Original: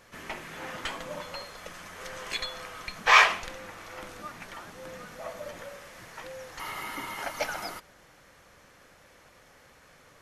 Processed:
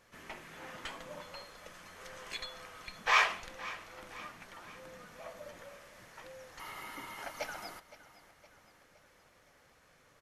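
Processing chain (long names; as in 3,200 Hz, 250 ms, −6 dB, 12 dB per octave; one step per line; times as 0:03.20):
repeating echo 515 ms, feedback 52%, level −17 dB
level −8.5 dB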